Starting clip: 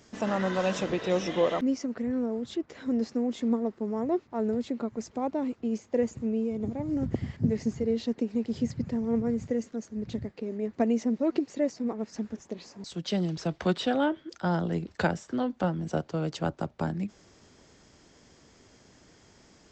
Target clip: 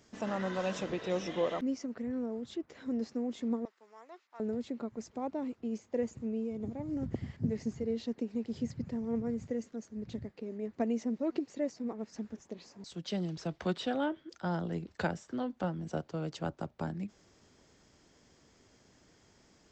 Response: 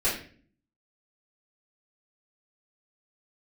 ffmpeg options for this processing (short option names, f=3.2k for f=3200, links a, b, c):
-filter_complex "[0:a]asettb=1/sr,asplit=3[a][b][c];[a]atrim=end=3.654[d];[b]atrim=start=3.65:end=4.4,asetpts=PTS-STARTPTS,afade=t=in:d=0.004:c=qsin,afade=t=out:st=0.746:d=0.004:c=qsin,highpass=1.4k[e];[c]atrim=start=4.396[f];[d][e]acrossfade=d=0.004:c1=hsin:c2=qsin[g];[g][f]acrossfade=d=0.004:c1=qsin:c2=hsin,volume=-6.5dB"